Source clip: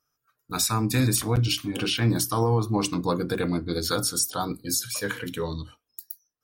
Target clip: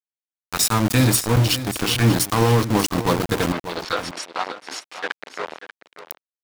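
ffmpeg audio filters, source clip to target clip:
-filter_complex "[0:a]aeval=exprs='val(0)*gte(abs(val(0)),0.0596)':c=same,asettb=1/sr,asplit=3[a][b][c];[a]atrim=end=3.524[d];[b]atrim=start=3.52:end=6.04,asetpts=PTS-STARTPTS,afade=t=in:d=0.004:c=qsin,afade=t=out:st=2.516:d=0.004:c=qsin,highpass=470,lowpass=3.2k[e];[c]atrim=start=6.036[f];[d][e]acrossfade=d=0.004:c1=hsin:c2=qsin[g];[g][f]acrossfade=d=0.004:c1=qsin:c2=hsin,aecho=1:1:588:0.224,volume=6dB"

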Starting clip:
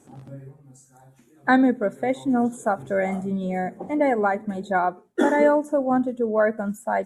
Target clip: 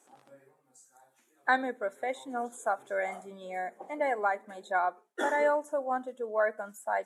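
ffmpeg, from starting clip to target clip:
-af "highpass=640,volume=-4.5dB"

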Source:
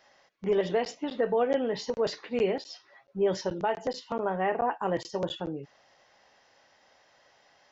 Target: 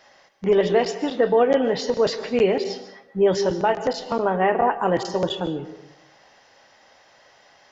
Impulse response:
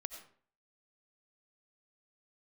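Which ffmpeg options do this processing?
-filter_complex "[0:a]asplit=2[a][b];[1:a]atrim=start_sample=2205,asetrate=26901,aresample=44100[c];[b][c]afir=irnorm=-1:irlink=0,volume=-0.5dB[d];[a][d]amix=inputs=2:normalize=0,volume=2.5dB"

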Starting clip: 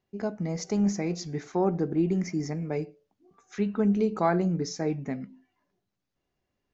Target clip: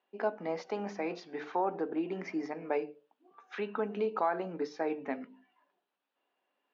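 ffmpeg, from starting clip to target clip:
-af "highshelf=f=2.2k:g=12,bandreject=f=50:t=h:w=6,bandreject=f=100:t=h:w=6,bandreject=f=150:t=h:w=6,bandreject=f=200:t=h:w=6,bandreject=f=250:t=h:w=6,bandreject=f=300:t=h:w=6,bandreject=f=350:t=h:w=6,bandreject=f=400:t=h:w=6,bandreject=f=450:t=h:w=6,alimiter=limit=-20.5dB:level=0:latency=1:release=240,highpass=f=300:w=0.5412,highpass=f=300:w=1.3066,equalizer=f=360:t=q:w=4:g=-6,equalizer=f=910:t=q:w=4:g=5,equalizer=f=2.1k:t=q:w=4:g=-8,lowpass=f=2.8k:w=0.5412,lowpass=f=2.8k:w=1.3066,volume=2dB"

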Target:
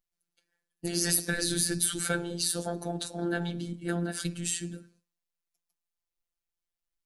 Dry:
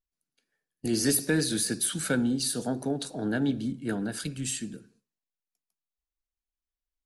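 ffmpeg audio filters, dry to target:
-filter_complex "[0:a]asplit=3[a][b][c];[a]afade=t=out:st=1.33:d=0.02[d];[b]asubboost=boost=10.5:cutoff=180,afade=t=in:st=1.33:d=0.02,afade=t=out:st=1.99:d=0.02[e];[c]afade=t=in:st=1.99:d=0.02[f];[d][e][f]amix=inputs=3:normalize=0,afftfilt=real='re*lt(hypot(re,im),0.355)':imag='im*lt(hypot(re,im),0.355)':win_size=1024:overlap=0.75,afftfilt=real='hypot(re,im)*cos(PI*b)':imag='0':win_size=1024:overlap=0.75,volume=4dB"

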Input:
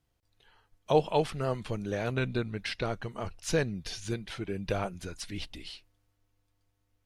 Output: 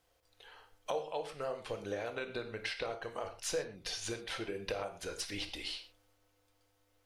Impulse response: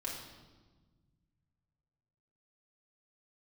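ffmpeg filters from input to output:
-filter_complex "[0:a]lowshelf=f=330:t=q:w=1.5:g=-10.5,acompressor=threshold=-44dB:ratio=5,asplit=2[a][b];[1:a]atrim=start_sample=2205,afade=t=out:st=0.18:d=0.01,atrim=end_sample=8379[c];[b][c]afir=irnorm=-1:irlink=0,volume=-1.5dB[d];[a][d]amix=inputs=2:normalize=0,volume=3dB"

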